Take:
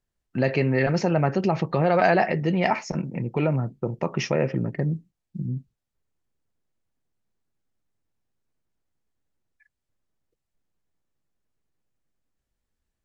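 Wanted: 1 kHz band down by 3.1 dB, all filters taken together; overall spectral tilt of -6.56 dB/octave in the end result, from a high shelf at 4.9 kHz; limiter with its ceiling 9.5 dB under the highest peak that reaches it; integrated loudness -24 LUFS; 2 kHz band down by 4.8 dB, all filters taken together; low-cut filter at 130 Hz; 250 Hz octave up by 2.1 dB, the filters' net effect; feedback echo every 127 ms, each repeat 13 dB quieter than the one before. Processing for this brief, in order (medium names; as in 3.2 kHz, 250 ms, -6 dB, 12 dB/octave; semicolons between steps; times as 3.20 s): high-pass 130 Hz; peaking EQ 250 Hz +4.5 dB; peaking EQ 1 kHz -4.5 dB; peaking EQ 2 kHz -4 dB; treble shelf 4.9 kHz -4 dB; peak limiter -18.5 dBFS; feedback delay 127 ms, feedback 22%, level -13 dB; trim +5 dB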